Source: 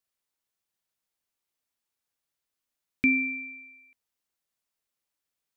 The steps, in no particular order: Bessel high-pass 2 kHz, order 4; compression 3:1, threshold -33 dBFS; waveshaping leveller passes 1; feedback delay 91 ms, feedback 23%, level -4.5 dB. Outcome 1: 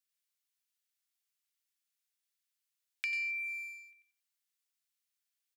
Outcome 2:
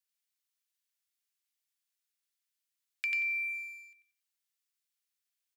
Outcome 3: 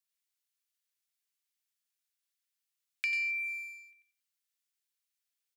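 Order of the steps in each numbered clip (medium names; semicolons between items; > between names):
feedback delay > waveshaping leveller > compression > Bessel high-pass; compression > feedback delay > waveshaping leveller > Bessel high-pass; feedback delay > waveshaping leveller > Bessel high-pass > compression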